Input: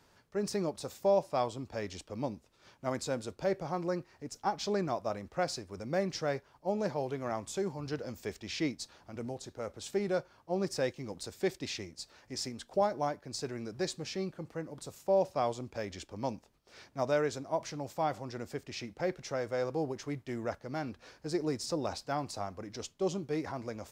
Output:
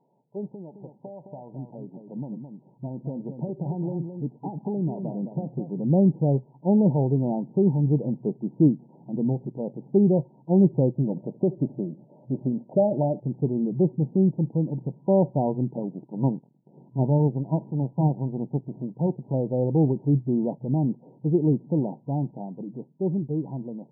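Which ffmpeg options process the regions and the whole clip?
ffmpeg -i in.wav -filter_complex "[0:a]asettb=1/sr,asplit=3[link_01][link_02][link_03];[link_01]atrim=end=0.524[link_04];[link_02]atrim=start=0.52:end=5.81,asetpts=PTS-STARTPTS,afade=type=in:duration=0.004:curve=qsin,afade=type=out:start_time=5.286:duration=0.004:curve=qsin,acompressor=threshold=-36dB:ratio=12:attack=3.2:release=140:knee=1:detection=peak,aecho=1:1:214:0.398,atrim=end_sample=233289[link_05];[link_03]atrim=start=5.806[link_06];[link_04][link_05]acrossfade=duration=0.004:curve1=hsin:curve2=qsin[link_07];[link_07][link_06]acrossfade=duration=0.004:curve1=qsin:curve2=hsin,asettb=1/sr,asplit=3[link_08][link_09][link_10];[link_08]atrim=end=10.934[link_11];[link_09]atrim=start=10.93:end=13.2,asetpts=PTS-STARTPTS,afade=type=in:duration=0.004:curve=qsin,afade=type=out:start_time=2.266:duration=0.004:curve=qsin,acompressor=threshold=-33dB:ratio=2:attack=3.2:release=140:knee=1:detection=peak,equalizer=frequency=600:width_type=o:width=0.25:gain=11,aecho=1:1:73|146|219:0.0708|0.029|0.0119,atrim=end_sample=100107[link_12];[link_10]atrim=start=13.196[link_13];[link_11][link_12]acrossfade=duration=0.004:curve1=hsin:curve2=qsin[link_14];[link_14][link_13]acrossfade=duration=0.004:curve1=qsin:curve2=hsin,asettb=1/sr,asplit=3[link_15][link_16][link_17];[link_15]atrim=end=15.794[link_18];[link_16]atrim=start=15.79:end=19.34,asetpts=PTS-STARTPTS,afade=type=in:duration=0.004:curve=qsin,afade=type=out:start_time=3.546:duration=0.004:curve=qsin,lowpass=frequency=1800:width_type=q:width=1.8,aeval=exprs='max(val(0),0)':channel_layout=same[link_19];[link_17]atrim=start=19.336[link_20];[link_18][link_19]acrossfade=duration=0.004:curve1=hsin:curve2=qsin[link_21];[link_21][link_20]acrossfade=duration=0.004:curve1=qsin:curve2=hsin,afftfilt=real='re*between(b*sr/4096,120,970)':imag='im*between(b*sr/4096,120,970)':win_size=4096:overlap=0.75,asubboost=boost=6.5:cutoff=240,dynaudnorm=framelen=650:gausssize=9:maxgain=7.5dB" out.wav

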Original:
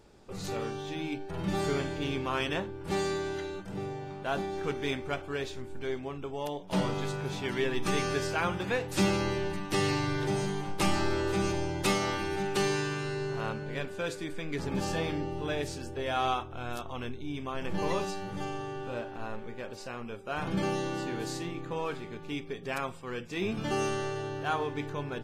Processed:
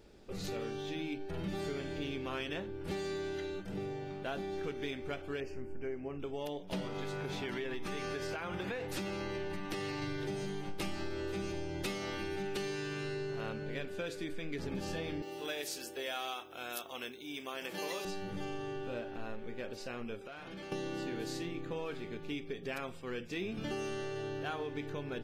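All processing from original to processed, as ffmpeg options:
ffmpeg -i in.wav -filter_complex "[0:a]asettb=1/sr,asplit=3[link_01][link_02][link_03];[link_01]atrim=end=5.404[link_04];[link_02]atrim=start=5.4:end=6.2,asetpts=PTS-STARTPTS,afade=type=in:duration=0.004:curve=qsin,afade=type=out:start_time=0.796:duration=0.004:curve=qsin,asuperstop=centerf=3700:order=12:qfactor=2.4,highshelf=frequency=2600:gain=-10[link_05];[link_03]atrim=start=6.196[link_06];[link_04][link_05]acrossfade=duration=0.004:curve1=hsin:curve2=qsin[link_07];[link_07][link_06]acrossfade=duration=0.004:curve1=qsin:curve2=hsin,asettb=1/sr,asplit=3[link_08][link_09][link_10];[link_08]atrim=end=6.874[link_11];[link_09]atrim=start=6.87:end=10.02,asetpts=PTS-STARTPTS,afade=type=in:duration=0.004:curve=qsin,afade=type=out:start_time=3.146:duration=0.004:curve=qsin,equalizer=frequency=1000:width_type=o:width=1.6:gain=5.5,acompressor=threshold=-29dB:ratio=6:attack=3.2:release=140:knee=1:detection=peak,aeval=exprs='val(0)+0.00141*sin(2*PI*2100*n/s)':channel_layout=same[link_12];[link_10]atrim=start=10.016[link_13];[link_11][link_12]acrossfade=duration=0.004:curve1=hsin:curve2=qsin[link_14];[link_14][link_13]acrossfade=duration=0.004:curve1=qsin:curve2=hsin,asettb=1/sr,asplit=3[link_15][link_16][link_17];[link_15]atrim=end=15.224[link_18];[link_16]atrim=start=15.22:end=18.05,asetpts=PTS-STARTPTS,afade=type=in:duration=0.004:curve=qsin,afade=type=out:start_time=2.826:duration=0.004:curve=qsin,highpass=frequency=350:poles=1,aemphasis=mode=production:type=bsi[link_19];[link_17]atrim=start=18.046[link_20];[link_18][link_19]acrossfade=duration=0.004:curve1=hsin:curve2=qsin[link_21];[link_21][link_20]acrossfade=duration=0.004:curve1=qsin:curve2=hsin,asettb=1/sr,asplit=3[link_22][link_23][link_24];[link_22]atrim=end=20.214[link_25];[link_23]atrim=start=20.21:end=20.72,asetpts=PTS-STARTPTS,afade=type=in:duration=0.004:curve=qsin,afade=type=out:start_time=0.506:duration=0.004:curve=qsin,asplit=2[link_26][link_27];[link_27]highpass=frequency=720:poles=1,volume=13dB,asoftclip=type=tanh:threshold=-20dB[link_28];[link_26][link_28]amix=inputs=2:normalize=0,lowpass=frequency=6500:poles=1,volume=-6dB,acompressor=threshold=-43dB:ratio=6:attack=3.2:release=140:knee=1:detection=peak[link_29];[link_24]atrim=start=20.716[link_30];[link_25][link_29]acrossfade=duration=0.004:curve1=hsin:curve2=qsin[link_31];[link_31][link_30]acrossfade=duration=0.004:curve1=qsin:curve2=hsin,equalizer=frequency=125:width_type=o:width=1:gain=-5,equalizer=frequency=1000:width_type=o:width=1:gain=-8,equalizer=frequency=8000:width_type=o:width=1:gain=-6,acompressor=threshold=-36dB:ratio=6,volume=1dB" out.wav

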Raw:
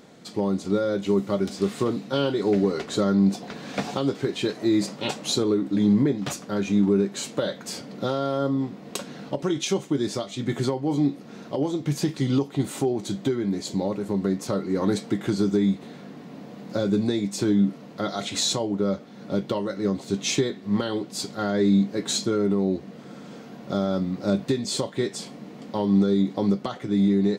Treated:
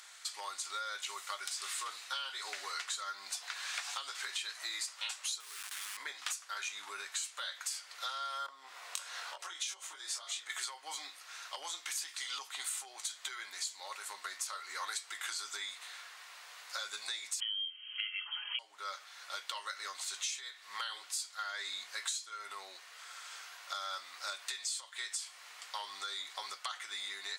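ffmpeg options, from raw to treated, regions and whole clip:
ffmpeg -i in.wav -filter_complex "[0:a]asettb=1/sr,asplit=3[link_01][link_02][link_03];[link_01]atrim=end=5.404[link_04];[link_02]atrim=start=5.4:end=5.97,asetpts=PTS-STARTPTS,afade=type=in:duration=0.004:curve=qsin,afade=type=out:start_time=0.566:duration=0.004:curve=qsin,acompressor=threshold=-25dB:ratio=5:attack=3.2:release=140:knee=1:detection=peak,acrusher=bits=7:dc=4:mix=0:aa=0.000001[link_05];[link_03]atrim=start=5.966[link_06];[link_04][link_05]acrossfade=duration=0.004:curve1=hsin:curve2=qsin[link_07];[link_07][link_06]acrossfade=duration=0.004:curve1=qsin:curve2=hsin,asettb=1/sr,asplit=3[link_08][link_09][link_10];[link_08]atrim=end=8.464[link_11];[link_09]atrim=start=8.46:end=10.5,asetpts=PTS-STARTPTS,afade=type=in:duration=0.004:curve=qsin,afade=type=out:start_time=2.036:duration=0.004:curve=qsin,equalizer=frequency=520:width_type=o:width=2.1:gain=8,acompressor=threshold=-30dB:ratio=5:attack=3.2:release=140:knee=1:detection=peak,asplit=2[link_12][link_13];[link_13]adelay=23,volume=-3dB[link_14];[link_12][link_14]amix=inputs=2:normalize=0,atrim=end_sample=89964[link_15];[link_10]atrim=start=10.496[link_16];[link_11][link_15]acrossfade=duration=0.004:curve1=hsin:curve2=qsin[link_17];[link_17][link_16]acrossfade=duration=0.004:curve1=qsin:curve2=hsin,asettb=1/sr,asplit=3[link_18][link_19][link_20];[link_18]atrim=end=17.404[link_21];[link_19]atrim=start=17.4:end=18.59,asetpts=PTS-STARTPTS,afade=type=in:duration=0.004:curve=qsin,afade=type=out:start_time=1.186:duration=0.004:curve=qsin,lowpass=frequency=2900:width_type=q:width=0.5098,lowpass=frequency=2900:width_type=q:width=0.6013,lowpass=frequency=2900:width_type=q:width=0.9,lowpass=frequency=2900:width_type=q:width=2.563,afreqshift=-3400,aecho=1:1:4.8:0.5,atrim=end_sample=52479[link_22];[link_20]atrim=start=18.586[link_23];[link_21][link_22]acrossfade=duration=0.004:curve1=hsin:curve2=qsin[link_24];[link_24][link_23]acrossfade=duration=0.004:curve1=qsin:curve2=hsin,highpass=frequency=1200:width=0.5412,highpass=frequency=1200:width=1.3066,equalizer=frequency=9100:width_type=o:width=0.92:gain=8.5,acompressor=threshold=-39dB:ratio=10,volume=3dB" out.wav

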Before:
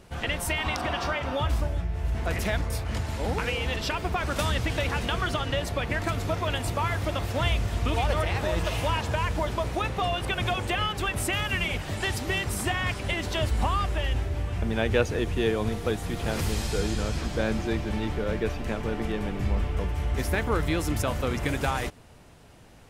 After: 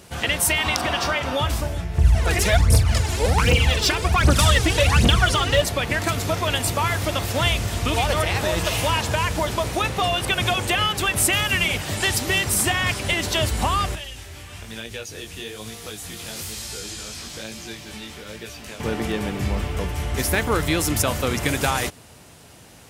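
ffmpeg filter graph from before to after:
ffmpeg -i in.wav -filter_complex "[0:a]asettb=1/sr,asplit=3[link_01][link_02][link_03];[link_01]atrim=end=1.984[link_04];[link_02]atrim=start=1.98:end=5.62,asetpts=PTS-STARTPTS,afade=type=in:duration=0.004:curve=qsin,afade=type=out:start_time=3.636:duration=0.004:curve=qsin,lowpass=frequency=12000:width=0.5412,lowpass=frequency=12000:width=1.3066,aphaser=in_gain=1:out_gain=1:delay=2.9:decay=0.66:speed=1.3:type=triangular,lowshelf=frequency=180:gain=6[link_05];[link_03]atrim=start=5.616[link_06];[link_04][link_05]acrossfade=duration=0.004:curve1=hsin:curve2=qsin[link_07];[link_07][link_06]acrossfade=duration=0.004:curve1=qsin:curve2=hsin,asettb=1/sr,asplit=3[link_08][link_09][link_10];[link_08]atrim=end=13.954[link_11];[link_09]atrim=start=13.95:end=18.8,asetpts=PTS-STARTPTS,afade=type=in:duration=0.004:curve=qsin,afade=type=out:start_time=4.846:duration=0.004:curve=qsin,acrossover=split=1100|2800[link_12][link_13][link_14];[link_12]acompressor=threshold=-39dB:ratio=4[link_15];[link_13]acompressor=threshold=-49dB:ratio=4[link_16];[link_14]acompressor=threshold=-41dB:ratio=4[link_17];[link_15][link_16][link_17]amix=inputs=3:normalize=0,flanger=delay=17:depth=6.4:speed=1.1[link_18];[link_10]atrim=start=18.796[link_19];[link_11][link_18]acrossfade=duration=0.004:curve1=hsin:curve2=qsin[link_20];[link_20][link_19]acrossfade=duration=0.004:curve1=qsin:curve2=hsin,highpass=68,highshelf=frequency=3700:gain=10.5,volume=4.5dB" out.wav

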